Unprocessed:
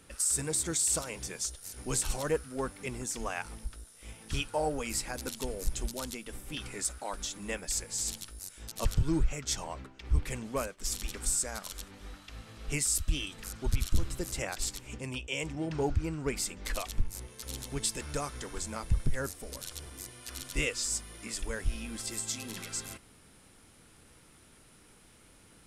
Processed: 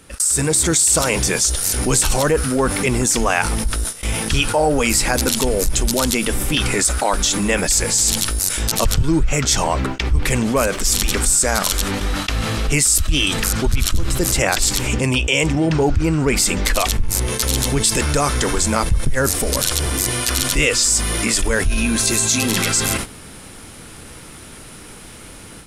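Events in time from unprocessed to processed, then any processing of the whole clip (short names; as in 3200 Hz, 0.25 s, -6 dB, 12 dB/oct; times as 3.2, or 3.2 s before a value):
21.65–22.4 ripple EQ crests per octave 1.5, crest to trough 7 dB
whole clip: AGC gain up to 10 dB; gate -40 dBFS, range -27 dB; fast leveller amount 70%; gain -2.5 dB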